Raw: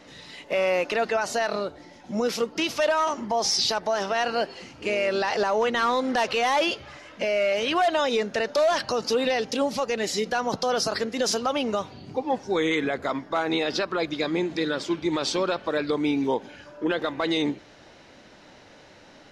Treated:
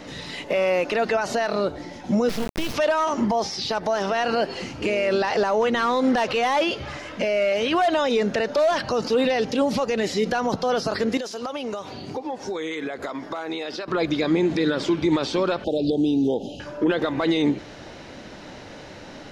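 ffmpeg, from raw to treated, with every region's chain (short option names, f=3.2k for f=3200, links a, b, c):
-filter_complex "[0:a]asettb=1/sr,asplit=3[a][b][c];[a]atrim=end=2.294[d];[b]atrim=start=2.29:end=2.74,asetpts=PTS-STARTPTS,afade=t=in:d=0.004:c=qsin,afade=t=out:st=0.446:d=0.004:c=qsin,lowshelf=f=230:g=9.5,acrossover=split=200|3000[e][f][g];[f]acompressor=threshold=-30dB:ratio=10:attack=3.2:release=140:knee=2.83:detection=peak[h];[e][h][g]amix=inputs=3:normalize=0,acrusher=bits=3:dc=4:mix=0:aa=0.000001[i];[c]atrim=start=2.736[j];[d][i]acrossfade=d=0.004:c1=hsin:c2=qsin[k];[k][j]acrossfade=d=0.004:c1=qsin:c2=hsin,asettb=1/sr,asplit=3[l][m][n];[l]atrim=end=11.174[o];[m]atrim=start=11.17:end=13.88,asetpts=PTS-STARTPTS,afade=t=in:d=0.004:c=qsin,afade=t=out:st=2.706:d=0.004:c=qsin,bass=f=250:g=-10,treble=f=4k:g=3,acompressor=threshold=-36dB:ratio=10:attack=3.2:release=140:knee=1:detection=peak[p];[n]atrim=start=13.876[q];[o][p]acrossfade=d=0.004:c1=hsin:c2=qsin[r];[r][q]acrossfade=d=0.004:c1=qsin:c2=hsin,asettb=1/sr,asplit=3[s][t][u];[s]atrim=end=15.644[v];[t]atrim=start=15.64:end=16.6,asetpts=PTS-STARTPTS,afade=t=in:d=0.004:c=qsin,afade=t=out:st=0.956:d=0.004:c=qsin,acompressor=threshold=-28dB:ratio=10:attack=3.2:release=140:knee=1:detection=peak,asuperstop=centerf=1500:order=20:qfactor=0.79[w];[u]atrim=start=16.596[x];[v][w]acrossfade=d=0.004:c1=hsin:c2=qsin[y];[y][x]acrossfade=d=0.004:c1=qsin:c2=hsin,alimiter=limit=-23.5dB:level=0:latency=1:release=90,acrossover=split=3900[z][aa];[aa]acompressor=threshold=-45dB:ratio=4:attack=1:release=60[ab];[z][ab]amix=inputs=2:normalize=0,lowshelf=f=460:g=5,volume=8dB"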